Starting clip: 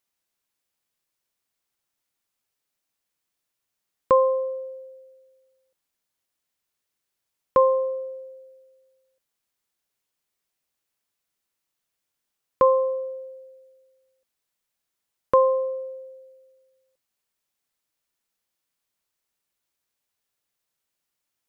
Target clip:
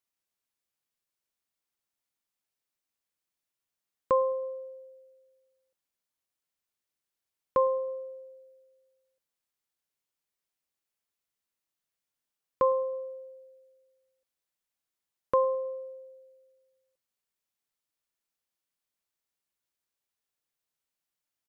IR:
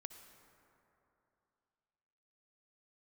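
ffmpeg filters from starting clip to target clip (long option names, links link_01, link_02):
-filter_complex "[0:a]asplit=2[link_01][link_02];[link_02]adelay=106,lowpass=frequency=2000:poles=1,volume=-23.5dB,asplit=2[link_03][link_04];[link_04]adelay=106,lowpass=frequency=2000:poles=1,volume=0.5,asplit=2[link_05][link_06];[link_06]adelay=106,lowpass=frequency=2000:poles=1,volume=0.5[link_07];[link_01][link_03][link_05][link_07]amix=inputs=4:normalize=0,volume=-7dB"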